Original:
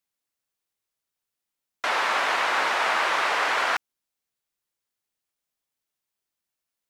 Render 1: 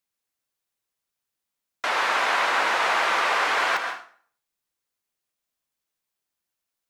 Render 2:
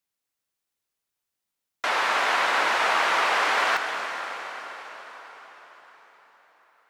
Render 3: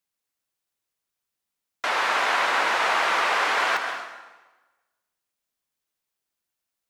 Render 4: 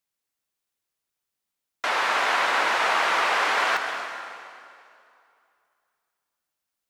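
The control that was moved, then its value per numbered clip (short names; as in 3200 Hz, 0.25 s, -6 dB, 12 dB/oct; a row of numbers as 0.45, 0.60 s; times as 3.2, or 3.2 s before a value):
plate-style reverb, RT60: 0.5, 5.3, 1.2, 2.5 s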